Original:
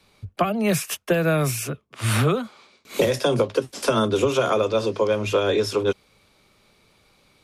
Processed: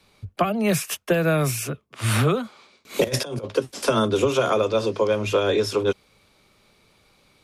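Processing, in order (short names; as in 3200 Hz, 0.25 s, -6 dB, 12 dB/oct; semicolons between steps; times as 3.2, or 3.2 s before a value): 3.04–3.45 negative-ratio compressor -26 dBFS, ratio -0.5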